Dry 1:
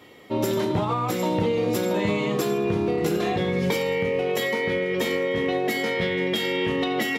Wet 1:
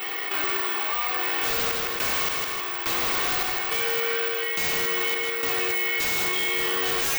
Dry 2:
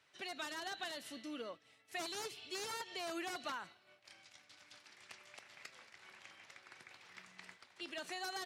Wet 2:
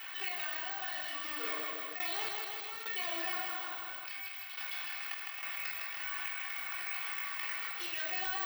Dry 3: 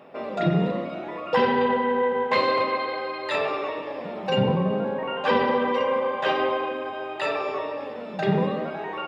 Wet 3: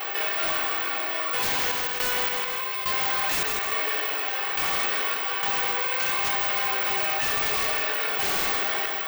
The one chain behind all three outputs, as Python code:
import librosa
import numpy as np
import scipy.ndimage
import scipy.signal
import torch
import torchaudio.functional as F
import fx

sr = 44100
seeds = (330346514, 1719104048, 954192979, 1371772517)

y = fx.halfwave_hold(x, sr)
y = scipy.signal.sosfilt(scipy.signal.butter(2, 900.0, 'highpass', fs=sr, output='sos'), y)
y = fx.rider(y, sr, range_db=3, speed_s=0.5)
y = scipy.signal.sosfilt(scipy.signal.butter(2, 3100.0, 'lowpass', fs=sr, output='sos'), y)
y = fx.high_shelf(y, sr, hz=2100.0, db=8.0)
y = y + 1.0 * np.pad(y, (int(2.7 * sr / 1000.0), 0))[:len(y)]
y = fx.room_shoebox(y, sr, seeds[0], volume_m3=870.0, walls='furnished', distance_m=4.1)
y = fx.tremolo_random(y, sr, seeds[1], hz=3.5, depth_pct=95)
y = 10.0 ** (-16.5 / 20.0) * (np.abs((y / 10.0 ** (-16.5 / 20.0) + 3.0) % 4.0 - 2.0) - 1.0)
y = (np.kron(y[::2], np.eye(2)[0]) * 2)[:len(y)]
y = fx.echo_feedback(y, sr, ms=158, feedback_pct=39, wet_db=-8.0)
y = fx.env_flatten(y, sr, amount_pct=70)
y = y * librosa.db_to_amplitude(-7.5)